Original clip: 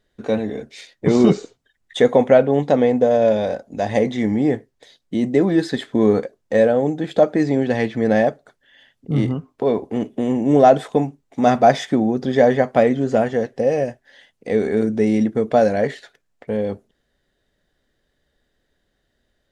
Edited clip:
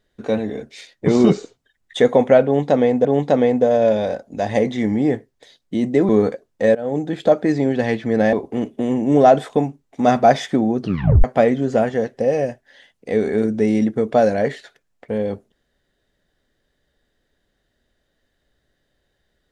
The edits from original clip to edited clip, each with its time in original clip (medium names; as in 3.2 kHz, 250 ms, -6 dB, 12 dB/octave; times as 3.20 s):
2.45–3.05 s: loop, 2 plays
5.49–6.00 s: delete
6.66–6.92 s: fade in, from -21 dB
8.24–9.72 s: delete
12.19 s: tape stop 0.44 s